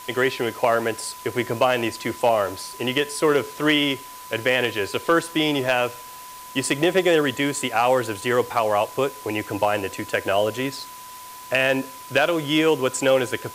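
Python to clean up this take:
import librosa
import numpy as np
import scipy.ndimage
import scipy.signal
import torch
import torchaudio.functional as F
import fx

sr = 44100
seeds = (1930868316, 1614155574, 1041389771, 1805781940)

y = fx.fix_declip(x, sr, threshold_db=-9.0)
y = fx.notch(y, sr, hz=1000.0, q=30.0)
y = fx.noise_reduce(y, sr, print_start_s=10.96, print_end_s=11.46, reduce_db=27.0)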